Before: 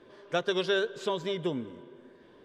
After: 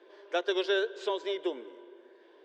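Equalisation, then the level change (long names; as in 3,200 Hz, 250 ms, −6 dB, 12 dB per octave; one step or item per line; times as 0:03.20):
elliptic high-pass filter 340 Hz, stop band 70 dB
low-pass filter 5,900 Hz 12 dB per octave
parametric band 1,200 Hz −6 dB 0.26 octaves
0.0 dB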